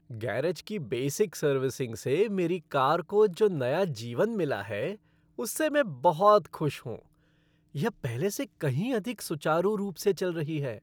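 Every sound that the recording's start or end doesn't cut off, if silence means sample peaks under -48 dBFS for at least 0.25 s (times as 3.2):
5.38–7.02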